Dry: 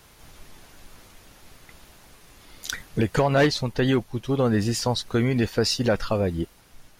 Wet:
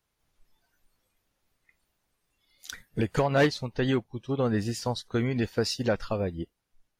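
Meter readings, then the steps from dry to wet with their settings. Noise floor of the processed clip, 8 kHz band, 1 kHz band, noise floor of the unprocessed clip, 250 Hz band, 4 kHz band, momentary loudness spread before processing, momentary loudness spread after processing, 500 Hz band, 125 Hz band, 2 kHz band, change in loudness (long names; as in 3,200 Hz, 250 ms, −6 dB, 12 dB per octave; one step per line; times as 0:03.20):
−80 dBFS, −8.0 dB, −4.5 dB, −54 dBFS, −5.0 dB, −7.0 dB, 12 LU, 15 LU, −4.0 dB, −5.0 dB, −4.0 dB, −4.5 dB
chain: noise reduction from a noise print of the clip's start 16 dB
expander for the loud parts 1.5 to 1, over −32 dBFS
level −2.5 dB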